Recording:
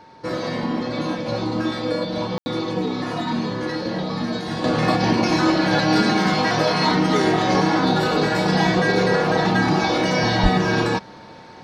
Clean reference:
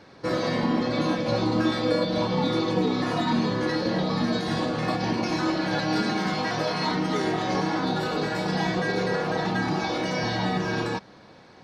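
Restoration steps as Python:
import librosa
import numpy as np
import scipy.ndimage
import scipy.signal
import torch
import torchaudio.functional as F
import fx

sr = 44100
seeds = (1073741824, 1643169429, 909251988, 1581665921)

y = fx.notch(x, sr, hz=900.0, q=30.0)
y = fx.highpass(y, sr, hz=140.0, slope=24, at=(10.42, 10.54), fade=0.02)
y = fx.fix_ambience(y, sr, seeds[0], print_start_s=11.11, print_end_s=11.61, start_s=2.38, end_s=2.46)
y = fx.fix_level(y, sr, at_s=4.64, step_db=-7.5)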